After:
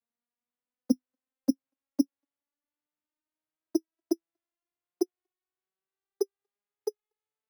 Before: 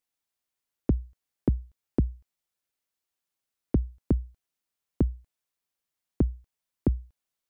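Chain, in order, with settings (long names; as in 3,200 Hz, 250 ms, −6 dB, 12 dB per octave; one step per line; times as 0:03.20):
vocoder with a gliding carrier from A#3, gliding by +11 semitones
bad sample-rate conversion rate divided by 8×, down none, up hold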